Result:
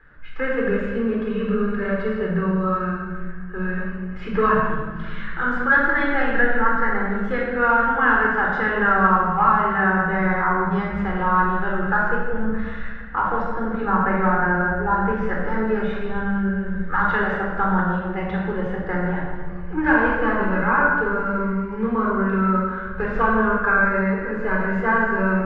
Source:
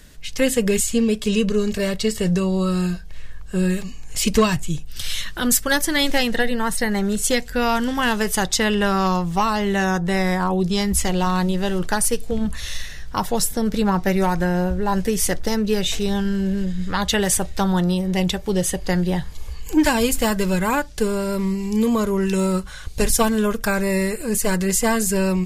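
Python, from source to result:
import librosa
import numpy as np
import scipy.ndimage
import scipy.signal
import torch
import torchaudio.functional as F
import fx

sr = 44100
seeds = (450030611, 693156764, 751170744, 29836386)

y = fx.ladder_lowpass(x, sr, hz=1600.0, resonance_pct=70)
y = fx.low_shelf(y, sr, hz=350.0, db=-7.5)
y = fx.room_shoebox(y, sr, seeds[0], volume_m3=1500.0, walls='mixed', distance_m=4.0)
y = y * 10.0 ** (4.0 / 20.0)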